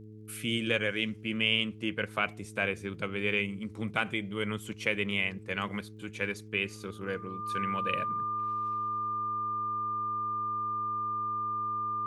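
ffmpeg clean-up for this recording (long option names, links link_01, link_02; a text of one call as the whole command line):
ffmpeg -i in.wav -af "adeclick=threshold=4,bandreject=frequency=107.5:width_type=h:width=4,bandreject=frequency=215:width_type=h:width=4,bandreject=frequency=322.5:width_type=h:width=4,bandreject=frequency=430:width_type=h:width=4,bandreject=frequency=1200:width=30" out.wav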